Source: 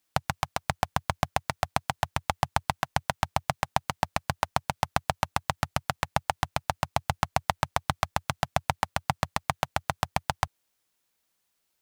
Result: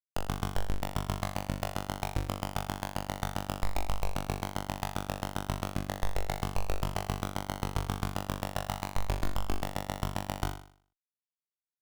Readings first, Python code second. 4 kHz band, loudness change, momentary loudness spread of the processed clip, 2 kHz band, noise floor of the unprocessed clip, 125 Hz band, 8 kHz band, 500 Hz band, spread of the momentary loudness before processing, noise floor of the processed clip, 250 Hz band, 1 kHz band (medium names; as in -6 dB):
-5.5 dB, -5.0 dB, 2 LU, -8.5 dB, -77 dBFS, -1.5 dB, -5.0 dB, -3.5 dB, 2 LU, under -85 dBFS, +1.0 dB, -8.5 dB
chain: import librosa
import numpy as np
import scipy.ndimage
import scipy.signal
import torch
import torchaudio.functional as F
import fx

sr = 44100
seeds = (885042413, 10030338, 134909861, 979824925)

y = fx.schmitt(x, sr, flips_db=-18.5)
y = fx.room_flutter(y, sr, wall_m=3.5, rt60_s=0.5)
y = y * 10.0 ** (6.0 / 20.0)